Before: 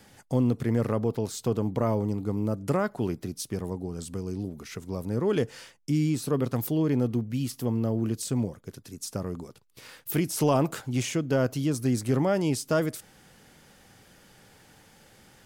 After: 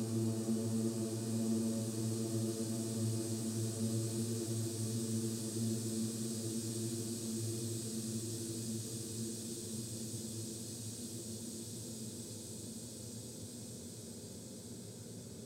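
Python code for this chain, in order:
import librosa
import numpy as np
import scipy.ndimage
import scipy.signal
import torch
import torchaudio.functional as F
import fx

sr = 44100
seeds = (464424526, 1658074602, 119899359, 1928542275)

y = fx.auto_swell(x, sr, attack_ms=460.0)
y = fx.paulstretch(y, sr, seeds[0], factor=28.0, window_s=1.0, from_s=8.01)
y = y * 10.0 ** (-6.5 / 20.0)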